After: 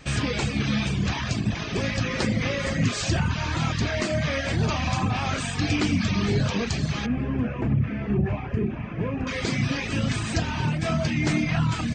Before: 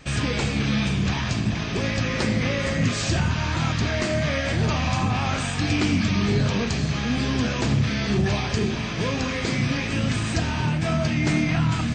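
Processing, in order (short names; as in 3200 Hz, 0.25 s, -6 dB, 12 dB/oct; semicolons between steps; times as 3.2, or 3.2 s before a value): reverb removal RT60 0.68 s; 7.06–9.27 EQ curve 280 Hz 0 dB, 2600 Hz -9 dB, 4000 Hz -30 dB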